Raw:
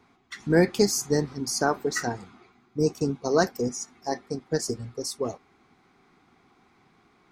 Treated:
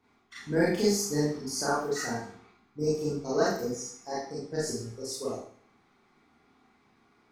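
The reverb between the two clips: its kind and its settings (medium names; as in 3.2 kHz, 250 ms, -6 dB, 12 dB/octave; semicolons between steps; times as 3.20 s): Schroeder reverb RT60 0.52 s, combs from 27 ms, DRR -8 dB; trim -12 dB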